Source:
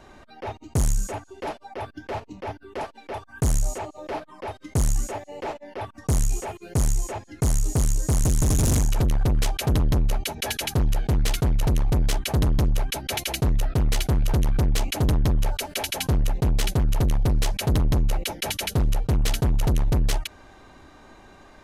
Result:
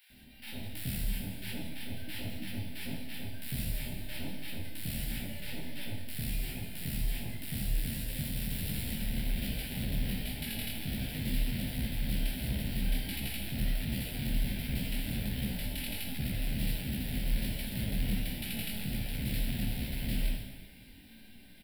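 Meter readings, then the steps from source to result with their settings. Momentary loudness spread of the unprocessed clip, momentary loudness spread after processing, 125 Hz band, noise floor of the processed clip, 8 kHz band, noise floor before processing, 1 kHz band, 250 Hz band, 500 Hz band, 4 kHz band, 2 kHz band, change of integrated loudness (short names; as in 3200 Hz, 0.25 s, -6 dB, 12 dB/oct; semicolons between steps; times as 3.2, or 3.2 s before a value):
12 LU, 7 LU, -13.0 dB, -52 dBFS, -13.0 dB, -51 dBFS, -20.0 dB, -7.0 dB, -17.0 dB, -7.0 dB, -6.5 dB, -11.5 dB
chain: spectral whitening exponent 0.3; resonant low shelf 290 Hz +7.5 dB, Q 3; compressor, threshold -20 dBFS, peak gain reduction 10 dB; Schroeder reverb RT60 1.4 s, combs from 32 ms, DRR 1 dB; limiter -14 dBFS, peak gain reduction 8 dB; bell 7700 Hz -3 dB 0.63 oct; fixed phaser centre 2800 Hz, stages 4; bands offset in time highs, lows 0.1 s, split 970 Hz; detuned doubles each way 47 cents; gain -5 dB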